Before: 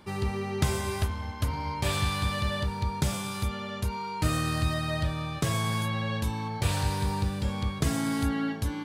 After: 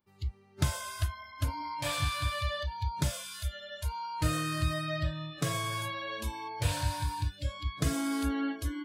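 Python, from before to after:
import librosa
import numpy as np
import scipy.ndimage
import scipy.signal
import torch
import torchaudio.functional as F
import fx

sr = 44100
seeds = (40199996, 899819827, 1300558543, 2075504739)

y = fx.noise_reduce_blind(x, sr, reduce_db=27)
y = y * librosa.db_to_amplitude(-2.0)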